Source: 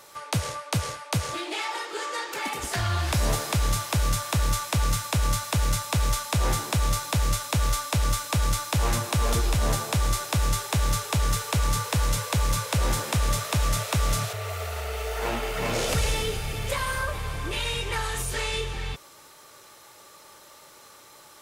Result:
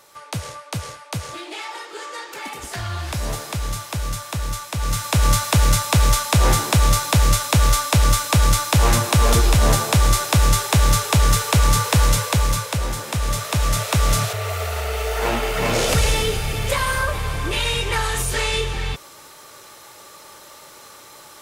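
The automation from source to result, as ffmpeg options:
-af "volume=16.5dB,afade=t=in:st=4.76:d=0.55:silence=0.316228,afade=t=out:st=12.05:d=0.87:silence=0.334965,afade=t=in:st=12.92:d=1.24:silence=0.398107"

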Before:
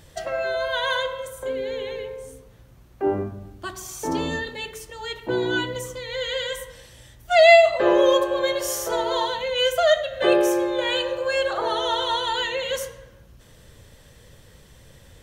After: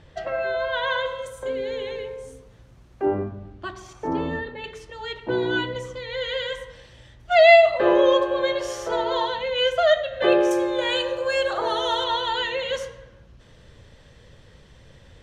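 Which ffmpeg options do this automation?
-af "asetnsamples=n=441:p=0,asendcmd='1.06 lowpass f 7800;3.05 lowpass f 3400;3.93 lowpass f 1900;4.64 lowpass f 4100;10.51 lowpass f 9800;12.04 lowpass f 4800',lowpass=3.2k"

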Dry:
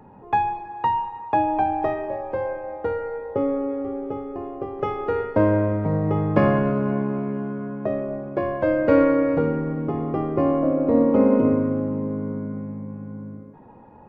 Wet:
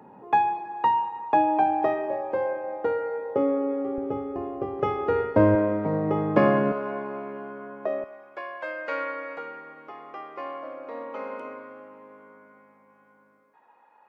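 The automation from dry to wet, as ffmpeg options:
-af "asetnsamples=n=441:p=0,asendcmd='3.98 highpass f 58;5.55 highpass f 210;6.72 highpass f 520;8.04 highpass f 1300',highpass=210"

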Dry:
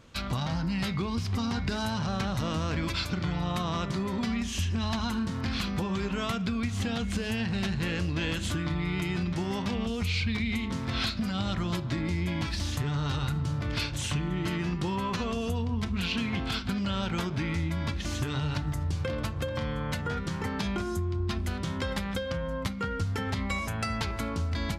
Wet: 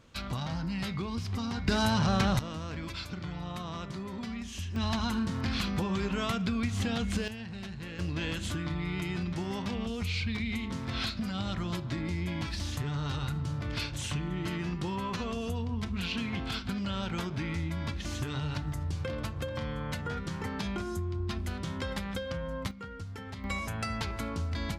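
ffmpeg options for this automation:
-af "asetnsamples=n=441:p=0,asendcmd='1.68 volume volume 4dB;2.39 volume volume -8dB;4.76 volume volume -0.5dB;7.28 volume volume -11dB;7.99 volume volume -3.5dB;22.71 volume volume -11dB;23.44 volume volume -3dB',volume=-4dB"

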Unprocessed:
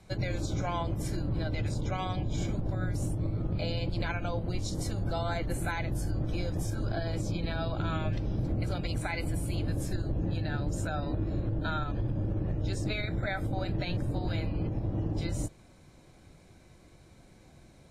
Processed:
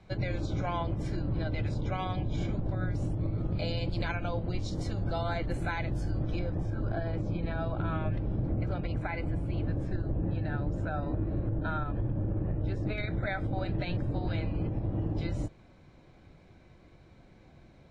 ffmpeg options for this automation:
-af "asetnsamples=n=441:p=0,asendcmd='3.38 lowpass f 7400;4.15 lowpass f 4400;6.39 lowpass f 2000;12.98 lowpass f 3500',lowpass=3.7k"

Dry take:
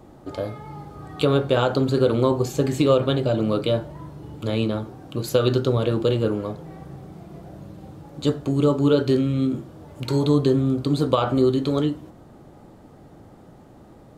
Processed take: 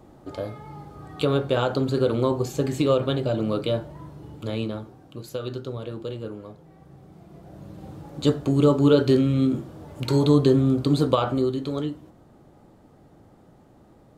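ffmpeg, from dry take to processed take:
-af "volume=10dB,afade=t=out:st=4.23:d=1.07:silence=0.354813,afade=t=in:st=6.74:d=0.69:silence=0.473151,afade=t=in:st=7.43:d=0.49:silence=0.473151,afade=t=out:st=10.95:d=0.55:silence=0.446684"

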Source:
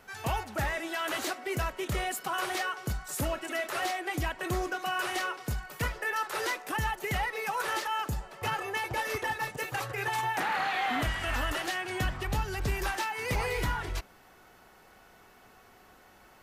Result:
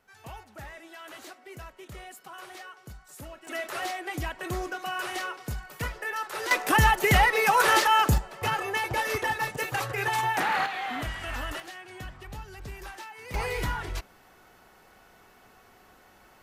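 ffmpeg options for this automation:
-af "asetnsamples=n=441:p=0,asendcmd='3.47 volume volume -1dB;6.51 volume volume 11dB;8.18 volume volume 4dB;10.66 volume volume -3dB;11.6 volume volume -10dB;13.34 volume volume 0.5dB',volume=-12dB"

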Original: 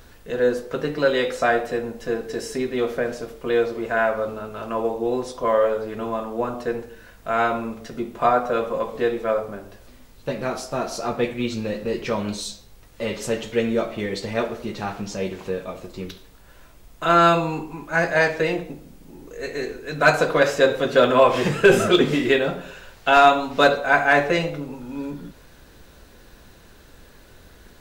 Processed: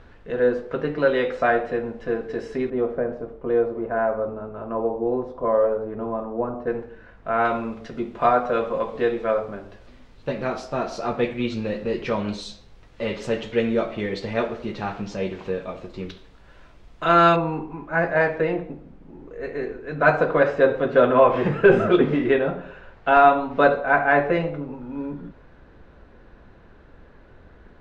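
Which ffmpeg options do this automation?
-af "asetnsamples=n=441:p=0,asendcmd='2.7 lowpass f 1000;6.67 lowpass f 1900;7.45 lowpass f 3800;17.36 lowpass f 1700',lowpass=2.4k"

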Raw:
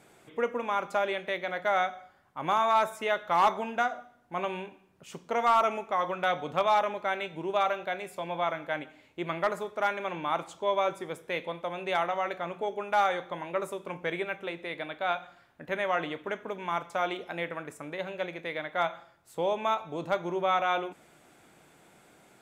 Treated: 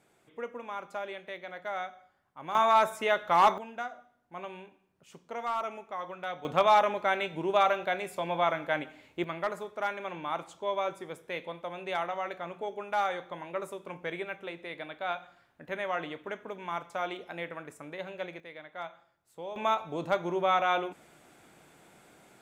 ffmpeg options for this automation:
-af "asetnsamples=n=441:p=0,asendcmd='2.55 volume volume 1.5dB;3.58 volume volume -9dB;6.45 volume volume 2.5dB;9.24 volume volume -4dB;18.4 volume volume -11.5dB;19.56 volume volume 0.5dB',volume=-9dB"

